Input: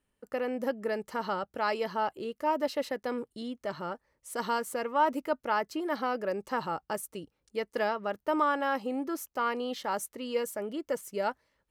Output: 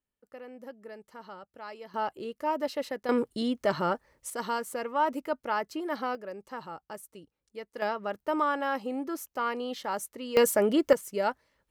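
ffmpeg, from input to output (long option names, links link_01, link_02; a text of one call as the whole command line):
ffmpeg -i in.wav -af "asetnsamples=nb_out_samples=441:pad=0,asendcmd='1.94 volume volume -1dB;3.09 volume volume 8.5dB;4.3 volume volume -1dB;6.15 volume volume -8dB;7.82 volume volume -0.5dB;10.37 volume volume 11.5dB;10.93 volume volume 2.5dB',volume=-13dB" out.wav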